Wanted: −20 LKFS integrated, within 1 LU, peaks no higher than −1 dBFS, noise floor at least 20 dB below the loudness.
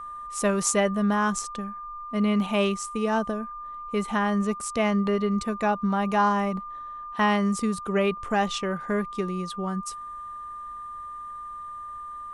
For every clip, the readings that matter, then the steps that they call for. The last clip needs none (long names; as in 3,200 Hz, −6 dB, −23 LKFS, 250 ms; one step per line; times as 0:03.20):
interfering tone 1,200 Hz; level of the tone −35 dBFS; integrated loudness −26.0 LKFS; sample peak −8.0 dBFS; target loudness −20.0 LKFS
→ notch filter 1,200 Hz, Q 30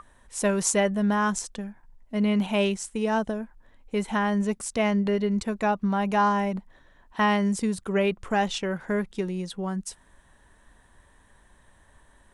interfering tone none found; integrated loudness −26.0 LKFS; sample peak −7.5 dBFS; target loudness −20.0 LKFS
→ level +6 dB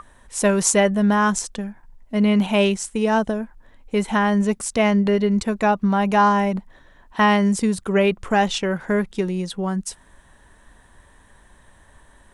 integrated loudness −20.0 LKFS; sample peak −1.5 dBFS; background noise floor −53 dBFS